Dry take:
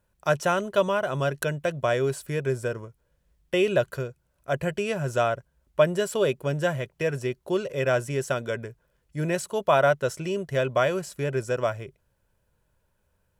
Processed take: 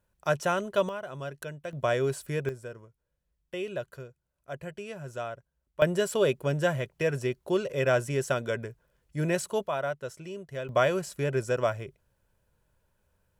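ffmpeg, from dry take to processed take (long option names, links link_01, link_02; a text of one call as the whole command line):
ffmpeg -i in.wav -af "asetnsamples=nb_out_samples=441:pad=0,asendcmd='0.89 volume volume -11.5dB;1.73 volume volume -2.5dB;2.49 volume volume -12dB;5.82 volume volume -1dB;9.67 volume volume -11dB;10.69 volume volume -1dB',volume=-3.5dB" out.wav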